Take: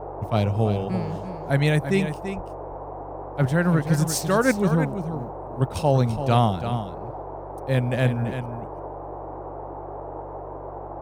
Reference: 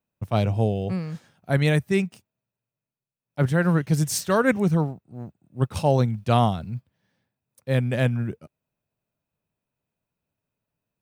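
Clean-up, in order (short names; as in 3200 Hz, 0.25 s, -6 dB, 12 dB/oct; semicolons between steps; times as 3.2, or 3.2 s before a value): de-hum 48.2 Hz, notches 3; 2.35–2.47 HPF 140 Hz 24 dB/oct; 6.14–6.26 HPF 140 Hz 24 dB/oct; noise print and reduce 30 dB; inverse comb 0.336 s -9.5 dB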